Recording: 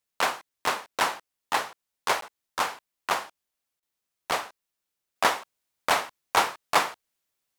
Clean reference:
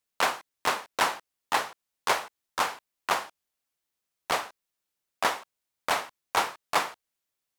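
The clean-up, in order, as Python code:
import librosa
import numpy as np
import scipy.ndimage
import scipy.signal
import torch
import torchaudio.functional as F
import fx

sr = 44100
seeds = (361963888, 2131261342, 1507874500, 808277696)

y = fx.fix_interpolate(x, sr, at_s=(2.21,), length_ms=13.0)
y = fx.fix_interpolate(y, sr, at_s=(3.8,), length_ms=24.0)
y = fx.gain(y, sr, db=fx.steps((0.0, 0.0), (5.16, -3.5)))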